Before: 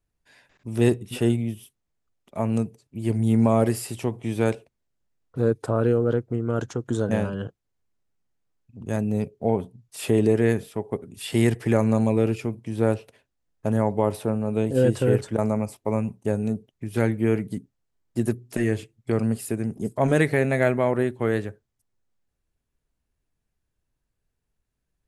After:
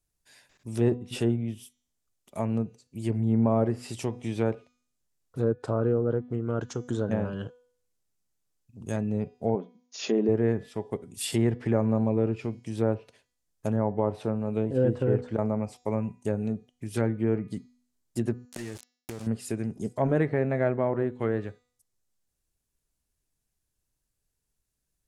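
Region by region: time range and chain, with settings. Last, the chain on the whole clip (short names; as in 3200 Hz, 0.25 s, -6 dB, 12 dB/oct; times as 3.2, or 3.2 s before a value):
9.55–10.29 brick-wall FIR band-pass 170–7000 Hz + notch 910 Hz, Q 15
18.45–19.27 sample gate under -30 dBFS + compressor 4:1, threshold -31 dBFS
whole clip: de-hum 246 Hz, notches 30; treble ducked by the level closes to 1300 Hz, closed at -18 dBFS; tone controls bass 0 dB, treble +12 dB; gain -4 dB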